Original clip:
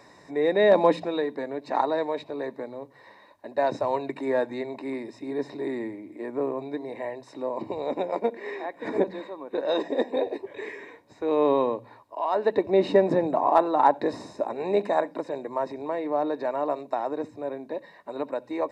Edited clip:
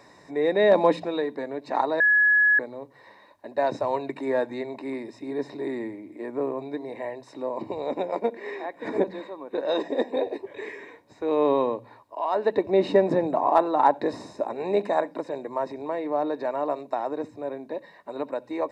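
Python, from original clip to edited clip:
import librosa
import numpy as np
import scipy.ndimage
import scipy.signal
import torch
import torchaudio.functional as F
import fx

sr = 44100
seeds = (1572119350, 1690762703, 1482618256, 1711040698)

y = fx.edit(x, sr, fx.bleep(start_s=2.0, length_s=0.59, hz=1690.0, db=-15.5), tone=tone)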